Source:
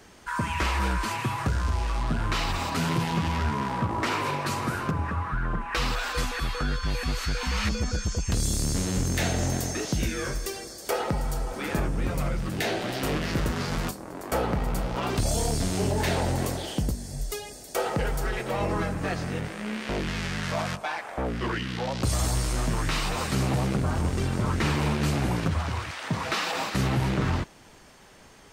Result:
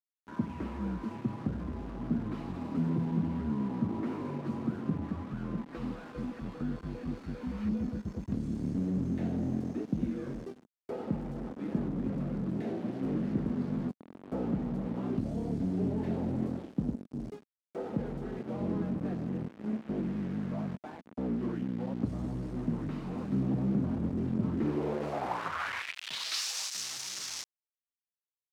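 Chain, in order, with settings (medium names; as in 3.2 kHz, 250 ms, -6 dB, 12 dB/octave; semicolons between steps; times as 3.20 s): bit crusher 5-bit; saturation -19 dBFS, distortion -20 dB; band-pass sweep 230 Hz -> 5.8 kHz, 24.52–26.43 s; trim +4 dB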